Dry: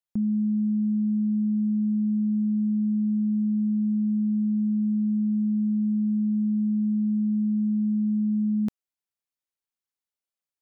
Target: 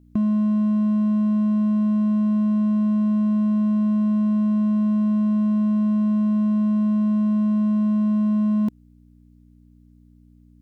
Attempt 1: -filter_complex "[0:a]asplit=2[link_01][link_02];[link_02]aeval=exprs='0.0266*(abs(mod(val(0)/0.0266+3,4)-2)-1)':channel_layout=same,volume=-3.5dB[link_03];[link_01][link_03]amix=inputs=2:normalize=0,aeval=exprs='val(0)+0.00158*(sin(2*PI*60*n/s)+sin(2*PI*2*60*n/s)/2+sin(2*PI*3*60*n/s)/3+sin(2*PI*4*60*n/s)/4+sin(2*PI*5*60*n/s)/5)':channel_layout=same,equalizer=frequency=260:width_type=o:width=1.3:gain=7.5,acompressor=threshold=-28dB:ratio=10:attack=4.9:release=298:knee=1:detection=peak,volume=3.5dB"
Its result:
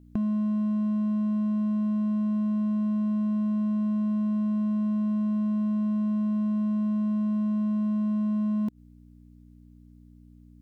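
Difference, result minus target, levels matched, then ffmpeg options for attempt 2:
downward compressor: peak gain reduction +6.5 dB
-filter_complex "[0:a]asplit=2[link_01][link_02];[link_02]aeval=exprs='0.0266*(abs(mod(val(0)/0.0266+3,4)-2)-1)':channel_layout=same,volume=-3.5dB[link_03];[link_01][link_03]amix=inputs=2:normalize=0,aeval=exprs='val(0)+0.00158*(sin(2*PI*60*n/s)+sin(2*PI*2*60*n/s)/2+sin(2*PI*3*60*n/s)/3+sin(2*PI*4*60*n/s)/4+sin(2*PI*5*60*n/s)/5)':channel_layout=same,equalizer=frequency=260:width_type=o:width=1.3:gain=7.5,acompressor=threshold=-21dB:ratio=10:attack=4.9:release=298:knee=1:detection=peak,volume=3.5dB"

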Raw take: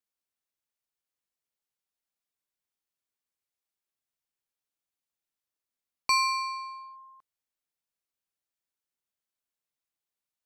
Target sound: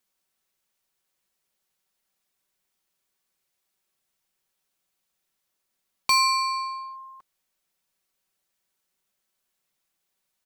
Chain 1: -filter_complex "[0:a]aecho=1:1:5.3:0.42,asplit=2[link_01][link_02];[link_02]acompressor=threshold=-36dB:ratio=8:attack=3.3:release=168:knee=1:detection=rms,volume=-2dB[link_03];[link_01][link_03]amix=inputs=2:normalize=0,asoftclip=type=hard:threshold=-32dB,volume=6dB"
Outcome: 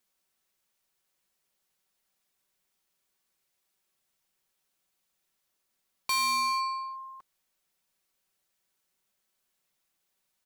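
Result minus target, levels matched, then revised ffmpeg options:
hard clipping: distortion +12 dB
-filter_complex "[0:a]aecho=1:1:5.3:0.42,asplit=2[link_01][link_02];[link_02]acompressor=threshold=-36dB:ratio=8:attack=3.3:release=168:knee=1:detection=rms,volume=-2dB[link_03];[link_01][link_03]amix=inputs=2:normalize=0,asoftclip=type=hard:threshold=-22dB,volume=6dB"

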